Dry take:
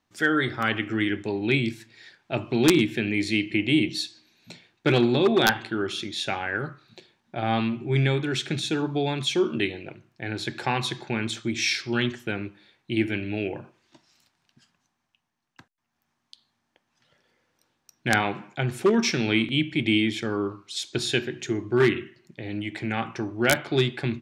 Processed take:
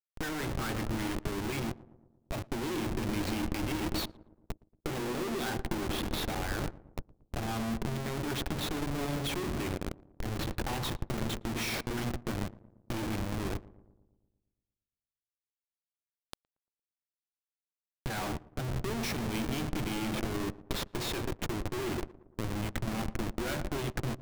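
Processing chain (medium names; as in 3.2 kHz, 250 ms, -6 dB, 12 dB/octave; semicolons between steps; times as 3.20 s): Schmitt trigger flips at -30.5 dBFS; filtered feedback delay 115 ms, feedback 79%, low-pass 840 Hz, level -12 dB; power-law waveshaper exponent 2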